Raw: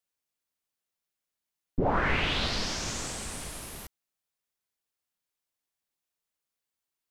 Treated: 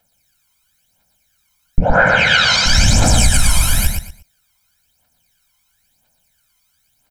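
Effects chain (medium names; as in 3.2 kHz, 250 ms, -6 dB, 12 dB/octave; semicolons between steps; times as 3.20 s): comb 1.3 ms, depth 80%; compression 6:1, threshold -30 dBFS, peak gain reduction 11.5 dB; phaser 0.99 Hz, delay 1 ms, feedback 78%; 1.83–2.66 s: cabinet simulation 220–8300 Hz, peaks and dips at 250 Hz -10 dB, 360 Hz -8 dB, 510 Hz +8 dB, 990 Hz -3 dB, 1.5 kHz +9 dB, 6.9 kHz +5 dB; feedback delay 118 ms, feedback 24%, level -5 dB; loudness maximiser +18 dB; trim -1 dB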